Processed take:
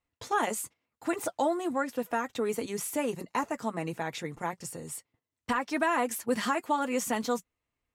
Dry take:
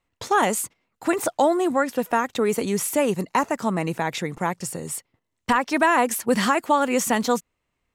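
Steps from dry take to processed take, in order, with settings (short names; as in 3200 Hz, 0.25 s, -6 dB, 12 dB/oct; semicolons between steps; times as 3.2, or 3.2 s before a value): notch comb 190 Hz; gain -7.5 dB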